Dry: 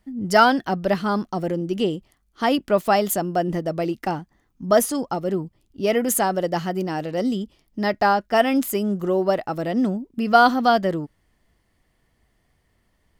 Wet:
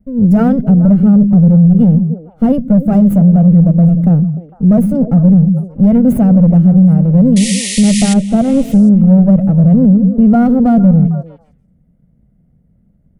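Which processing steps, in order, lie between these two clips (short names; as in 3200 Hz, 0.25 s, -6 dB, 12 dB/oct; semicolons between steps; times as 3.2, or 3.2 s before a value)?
minimum comb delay 1.4 ms; EQ curve 110 Hz 0 dB, 160 Hz +12 dB, 540 Hz +7 dB, 790 Hz -7 dB, 1700 Hz -13 dB, 4600 Hz -25 dB, 11000 Hz -12 dB; painted sound noise, 7.36–8.14, 1800–11000 Hz -22 dBFS; resonant low shelf 270 Hz +9 dB, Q 1.5; on a send: delay with a stepping band-pass 0.151 s, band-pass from 150 Hz, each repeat 1.4 oct, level -7.5 dB; on the sum: maximiser +3.5 dB; gain -1 dB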